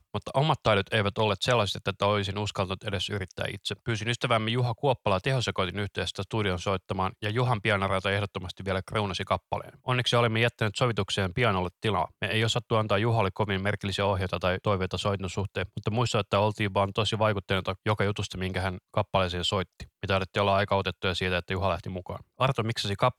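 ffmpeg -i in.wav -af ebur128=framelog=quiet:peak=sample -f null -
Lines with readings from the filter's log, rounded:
Integrated loudness:
  I:         -27.8 LUFS
  Threshold: -37.9 LUFS
Loudness range:
  LRA:         1.9 LU
  Threshold: -48.0 LUFS
  LRA low:   -28.8 LUFS
  LRA high:  -27.0 LUFS
Sample peak:
  Peak:      -10.2 dBFS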